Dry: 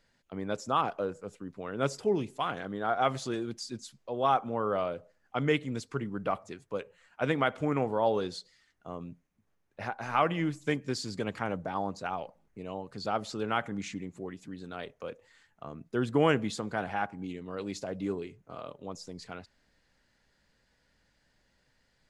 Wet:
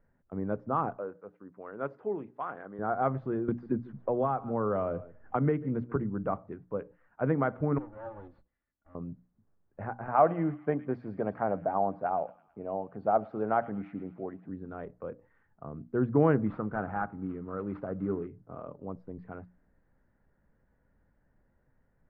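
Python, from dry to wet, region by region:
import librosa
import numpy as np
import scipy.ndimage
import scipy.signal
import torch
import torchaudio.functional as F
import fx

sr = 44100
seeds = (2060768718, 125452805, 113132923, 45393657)

y = fx.chain(x, sr, fx.highpass(hz=240.0, slope=6),
    fx.low_shelf(hz=390.0, db=-11.0), at=(0.97, 2.79))
y = fx.chain(y, sr, fx.echo_single(ms=143, db=-21.5),
    fx.band_squash(depth_pct=100), at=(3.48, 5.96))
y = fx.chain(y, sr, fx.lower_of_two(delay_ms=3.5),
    fx.pre_emphasis(coefficient=0.8), at=(7.78, 8.95))
y = fx.chain(y, sr, fx.highpass(hz=210.0, slope=6),
    fx.peak_eq(hz=680.0, db=10.5, octaves=0.57),
    fx.echo_wet_highpass(ms=110, feedback_pct=60, hz=3000.0, wet_db=-7.5), at=(10.08, 14.49))
y = fx.chain(y, sr, fx.cvsd(bps=32000),
    fx.peak_eq(hz=1300.0, db=10.0, octaves=0.28), at=(16.46, 18.27))
y = scipy.signal.sosfilt(scipy.signal.butter(4, 1600.0, 'lowpass', fs=sr, output='sos'), y)
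y = fx.low_shelf(y, sr, hz=430.0, db=9.0)
y = fx.hum_notches(y, sr, base_hz=60, count=5)
y = F.gain(torch.from_numpy(y), -3.5).numpy()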